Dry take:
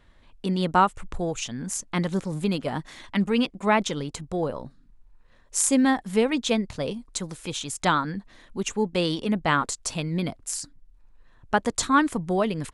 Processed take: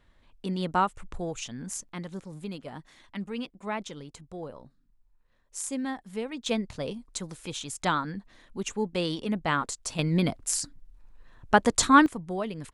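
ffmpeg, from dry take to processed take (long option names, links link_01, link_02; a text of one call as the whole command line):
ffmpeg -i in.wav -af "asetnsamples=nb_out_samples=441:pad=0,asendcmd='1.89 volume volume -12dB;6.46 volume volume -4.5dB;9.99 volume volume 2.5dB;12.06 volume volume -8dB',volume=-5.5dB" out.wav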